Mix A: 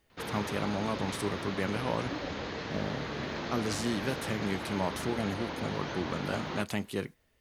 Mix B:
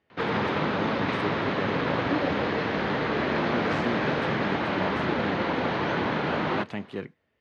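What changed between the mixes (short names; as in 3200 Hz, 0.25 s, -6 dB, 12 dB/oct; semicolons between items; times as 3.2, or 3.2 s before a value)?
background +11.5 dB; master: add BPF 110–2700 Hz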